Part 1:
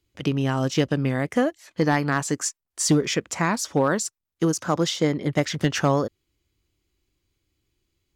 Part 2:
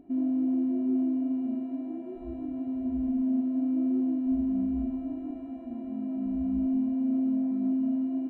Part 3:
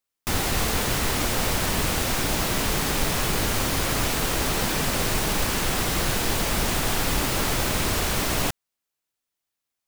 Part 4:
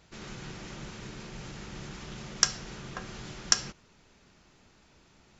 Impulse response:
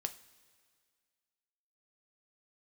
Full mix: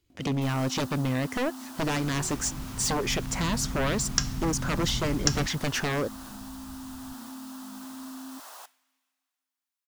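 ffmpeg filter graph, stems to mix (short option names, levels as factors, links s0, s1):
-filter_complex "[0:a]aeval=exprs='0.335*sin(PI/2*3.16*val(0)/0.335)':c=same,volume=0.2[s0];[1:a]equalizer=f=370:t=o:w=1.2:g=-4.5,acrusher=bits=4:mode=log:mix=0:aa=0.000001,flanger=delay=19:depth=5.2:speed=0.45,adelay=100,volume=0.891,asplit=2[s1][s2];[s2]volume=0.075[s3];[2:a]highpass=f=810:w=0.5412,highpass=f=810:w=1.3066,adelay=150,volume=0.473,asplit=2[s4][s5];[s5]volume=0.133[s6];[3:a]asubboost=boost=11:cutoff=170,adelay=1750,volume=0.562,asplit=2[s7][s8];[s8]volume=0.447[s9];[s1][s4]amix=inputs=2:normalize=0,acrossover=split=510|1700[s10][s11][s12];[s10]acompressor=threshold=0.0141:ratio=4[s13];[s11]acompressor=threshold=0.00251:ratio=4[s14];[s12]acompressor=threshold=0.00224:ratio=4[s15];[s13][s14][s15]amix=inputs=3:normalize=0,alimiter=level_in=3.35:limit=0.0631:level=0:latency=1:release=35,volume=0.299,volume=1[s16];[4:a]atrim=start_sample=2205[s17];[s3][s6][s9]amix=inputs=3:normalize=0[s18];[s18][s17]afir=irnorm=-1:irlink=0[s19];[s0][s7][s16][s19]amix=inputs=4:normalize=0"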